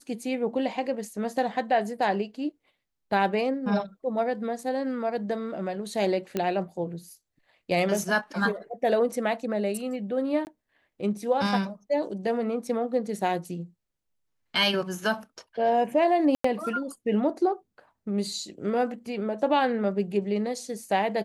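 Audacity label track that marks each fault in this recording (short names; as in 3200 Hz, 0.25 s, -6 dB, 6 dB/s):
6.370000	6.370000	pop -14 dBFS
10.450000	10.470000	gap 19 ms
16.350000	16.440000	gap 94 ms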